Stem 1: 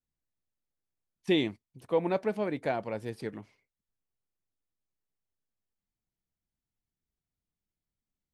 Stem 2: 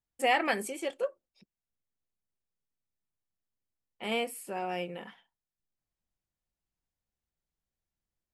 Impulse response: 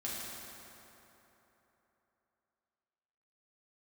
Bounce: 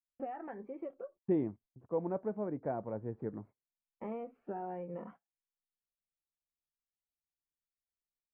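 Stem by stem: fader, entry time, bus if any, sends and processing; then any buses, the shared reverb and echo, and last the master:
-7.5 dB, 0.00 s, no send, low shelf 470 Hz +5.5 dB
-0.5 dB, 0.00 s, no send, compressor 16:1, threshold -38 dBFS, peak gain reduction 17.5 dB; cascading phaser rising 1.2 Hz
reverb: off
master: gate -56 dBFS, range -24 dB; LPF 1300 Hz 24 dB/oct; vocal rider within 4 dB 2 s

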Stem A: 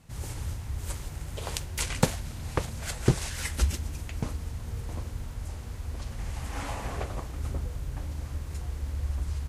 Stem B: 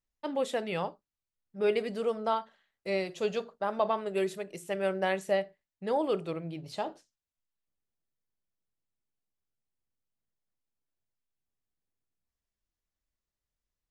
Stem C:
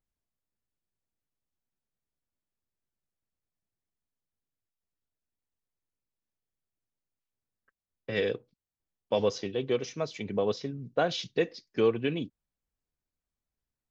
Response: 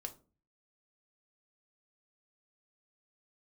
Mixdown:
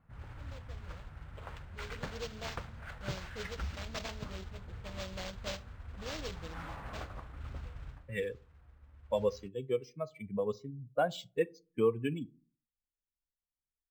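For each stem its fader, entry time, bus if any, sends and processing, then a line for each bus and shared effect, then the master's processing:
-11.0 dB, 0.00 s, no send, hard clip -21.5 dBFS, distortion -10 dB; bell 1400 Hz +8 dB 0.78 oct; modulation noise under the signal 10 dB; auto duck -14 dB, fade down 0.20 s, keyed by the third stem
1.81 s -22 dB -> 2.17 s -11.5 dB, 0.15 s, send -6.5 dB, notch 390 Hz, Q 12; noise-modulated delay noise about 4400 Hz, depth 0.33 ms
-1.5 dB, 0.00 s, send -6 dB, per-bin expansion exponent 2; high shelf 2800 Hz -8.5 dB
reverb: on, RT60 0.35 s, pre-delay 4 ms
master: low-pass opened by the level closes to 1700 Hz, open at -27 dBFS; bell 360 Hz -4 dB 0.65 oct; decimation joined by straight lines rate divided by 4×

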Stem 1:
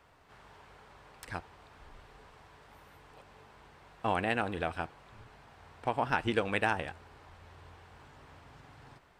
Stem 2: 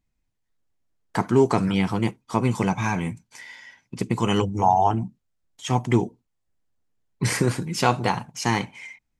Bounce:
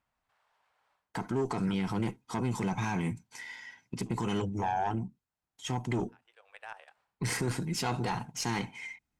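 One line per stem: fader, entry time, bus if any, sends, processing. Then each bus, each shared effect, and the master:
-8.0 dB, 0.00 s, no send, level quantiser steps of 10 dB; inverse Chebyshev high-pass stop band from 220 Hz, stop band 50 dB; auto duck -22 dB, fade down 0.20 s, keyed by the second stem
-2.0 dB, 0.00 s, no send, notch comb 580 Hz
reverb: off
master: vocal rider 0.5 s; tube stage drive 19 dB, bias 0.4; limiter -22.5 dBFS, peak gain reduction 6 dB

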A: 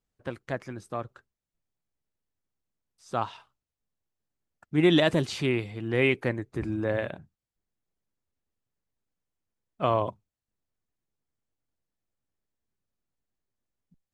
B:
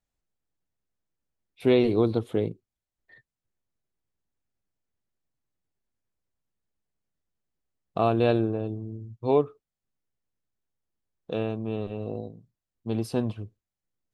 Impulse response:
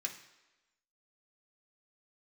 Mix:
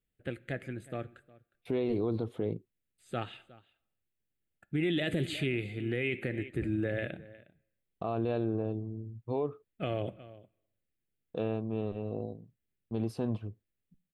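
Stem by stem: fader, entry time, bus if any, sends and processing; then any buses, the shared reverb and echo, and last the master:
-0.5 dB, 0.00 s, send -11.5 dB, echo send -21 dB, fixed phaser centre 2400 Hz, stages 4
-3.0 dB, 0.05 s, no send, no echo send, gate with hold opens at -44 dBFS; high shelf 2600 Hz -8.5 dB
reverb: on, RT60 1.1 s, pre-delay 3 ms
echo: echo 0.36 s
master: limiter -22 dBFS, peak gain reduction 10.5 dB

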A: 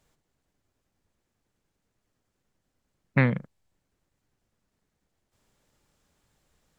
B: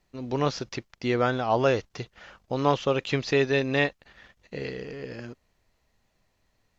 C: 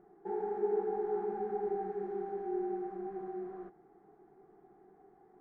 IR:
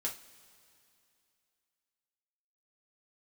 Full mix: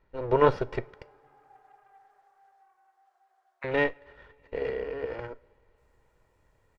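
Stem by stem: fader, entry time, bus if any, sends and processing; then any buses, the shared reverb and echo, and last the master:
-10.0 dB, 0.45 s, no send, ladder high-pass 740 Hz, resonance 35%; high shelf 3400 Hz +10 dB
+1.5 dB, 0.00 s, muted 1.03–3.64, send -12.5 dB, minimum comb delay 2.1 ms; LPF 1700 Hz 12 dB/oct; vocal rider within 4 dB 2 s
-14.5 dB, 0.15 s, send -9 dB, sample leveller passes 2; compressor 5:1, threshold -37 dBFS, peak gain reduction 10.5 dB; elliptic high-pass 590 Hz, stop band 50 dB; auto duck -13 dB, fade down 1.50 s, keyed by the second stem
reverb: on, pre-delay 3 ms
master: dry

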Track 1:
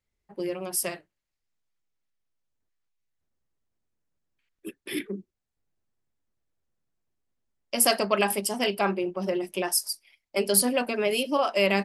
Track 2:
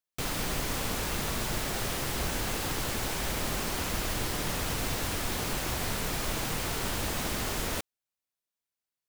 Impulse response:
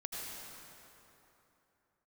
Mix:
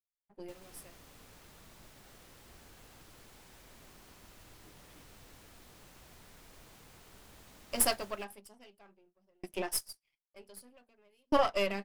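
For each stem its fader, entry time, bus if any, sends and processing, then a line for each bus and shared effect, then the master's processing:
+3.0 dB, 0.00 s, no send, no echo send, half-wave gain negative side -7 dB; gate with hold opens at -51 dBFS; dB-ramp tremolo decaying 0.53 Hz, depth 37 dB
-16.5 dB, 0.30 s, no send, echo send -4 dB, dry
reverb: off
echo: echo 0.134 s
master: upward expander 1.5:1, over -42 dBFS

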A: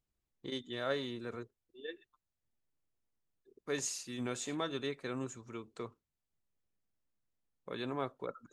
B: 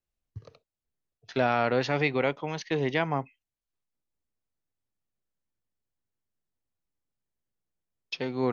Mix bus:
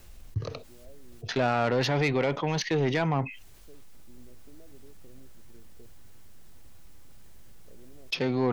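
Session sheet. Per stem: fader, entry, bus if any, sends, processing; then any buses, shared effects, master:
-11.0 dB, 0.00 s, no send, elliptic low-pass 660 Hz; compressor, threshold -41 dBFS, peak gain reduction 9.5 dB
+1.0 dB, 0.00 s, no send, fast leveller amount 50%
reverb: off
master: low shelf 88 Hz +9.5 dB; soft clip -18 dBFS, distortion -13 dB

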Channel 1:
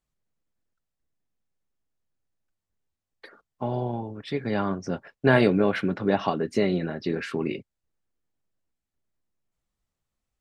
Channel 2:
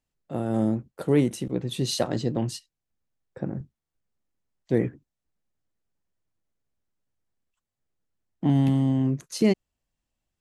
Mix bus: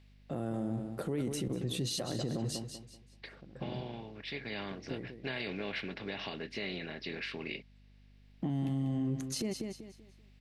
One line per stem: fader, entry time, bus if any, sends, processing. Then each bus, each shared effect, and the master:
-19.5 dB, 0.00 s, no send, no echo send, per-bin compression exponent 0.6; band shelf 3200 Hz +14.5 dB; hum 50 Hz, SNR 16 dB
+2.0 dB, 0.00 s, no send, echo send -11 dB, notch 930 Hz, Q 14; compressor 10:1, threshold -27 dBFS, peak gain reduction 12.5 dB; auto duck -23 dB, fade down 0.80 s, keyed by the first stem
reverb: off
echo: feedback echo 0.192 s, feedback 31%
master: limiter -26.5 dBFS, peak gain reduction 11 dB

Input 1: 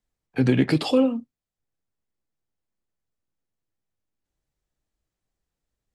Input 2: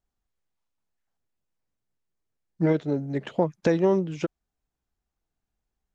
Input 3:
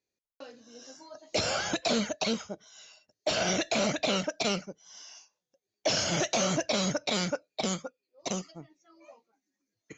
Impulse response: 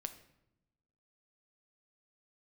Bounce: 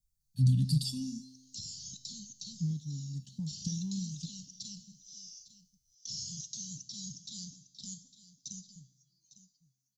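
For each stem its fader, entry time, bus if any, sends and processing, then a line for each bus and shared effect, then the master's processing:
+3.0 dB, 0.00 s, no send, no echo send, comb 1.1 ms, depth 59%
+1.0 dB, 0.00 s, send -11 dB, no echo send, dry
+2.0 dB, 0.20 s, send -6 dB, echo send -13 dB, compressor 2:1, threshold -42 dBFS, peak gain reduction 10 dB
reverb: on, RT60 0.90 s, pre-delay 7 ms
echo: echo 0.854 s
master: inverse Chebyshev band-stop 340–2400 Hz, stop band 40 dB; high shelf 6500 Hz +8 dB; resonator 130 Hz, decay 1.1 s, harmonics all, mix 60%

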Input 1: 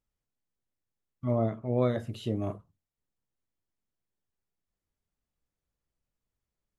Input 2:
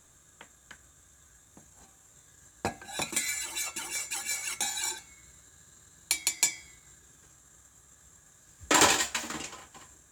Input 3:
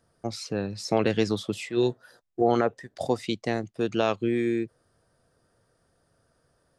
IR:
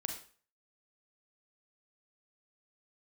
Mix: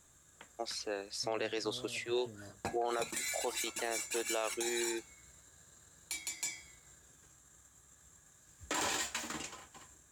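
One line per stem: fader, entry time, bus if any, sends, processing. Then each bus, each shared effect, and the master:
-17.0 dB, 0.00 s, no send, compressor, threshold -29 dBFS, peak gain reduction 9 dB
-4.5 dB, 0.00 s, no send, dry
-3.0 dB, 0.35 s, no send, Bessel high-pass 530 Hz, order 6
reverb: off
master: limiter -25.5 dBFS, peak gain reduction 11.5 dB

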